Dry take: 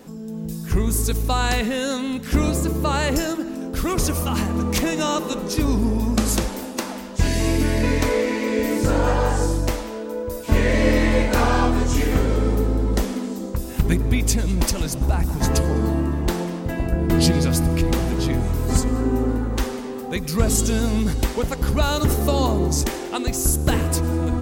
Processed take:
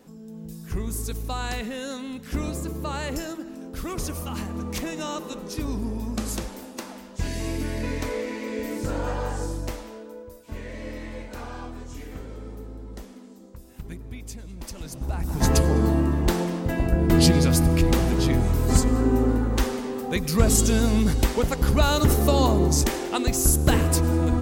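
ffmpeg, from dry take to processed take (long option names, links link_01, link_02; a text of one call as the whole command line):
ffmpeg -i in.wav -af "volume=9.5dB,afade=type=out:start_time=9.91:duration=0.51:silence=0.334965,afade=type=in:start_time=14.6:duration=0.63:silence=0.281838,afade=type=in:start_time=15.23:duration=0.22:silence=0.421697" out.wav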